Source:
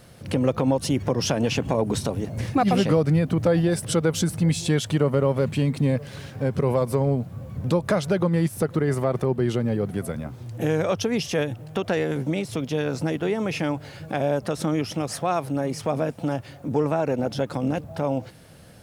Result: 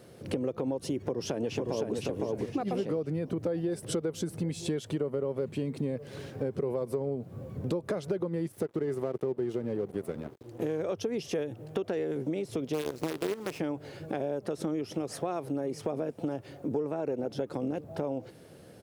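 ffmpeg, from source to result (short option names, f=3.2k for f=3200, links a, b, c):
-filter_complex "[0:a]asplit=2[a][b];[b]afade=t=in:st=1.01:d=0.01,afade=t=out:st=1.94:d=0.01,aecho=0:1:510|1020|1530|2040:0.749894|0.187474|0.0468684|0.0117171[c];[a][c]amix=inputs=2:normalize=0,asettb=1/sr,asplit=3[d][e][f];[d]atrim=end=8.524[g];[e]atrim=start=8.52:end=10.8,asetpts=PTS-STARTPTS,afade=t=in:d=0.004:c=qsin,afade=t=out:st=2.276:d=0.004:c=qsin,aeval=exprs='sgn(val(0))*max(abs(val(0))-0.0141,0)':c=same[h];[f]atrim=start=10.796[i];[g][h]acrossfade=d=0.004:c1=hsin:c2=qsin[j];[j][i]acrossfade=d=0.004:c1=qsin:c2=hsin,asplit=3[k][l][m];[k]afade=t=out:st=12.73:d=0.02[n];[l]acrusher=bits=4:dc=4:mix=0:aa=0.000001,afade=t=in:st=12.73:d=0.02,afade=t=out:st=13.58:d=0.02[o];[m]afade=t=in:st=13.58:d=0.02[p];[n][o][p]amix=inputs=3:normalize=0,highpass=74,equalizer=f=390:w=1.3:g=12,acompressor=threshold=-22dB:ratio=5,volume=-7dB"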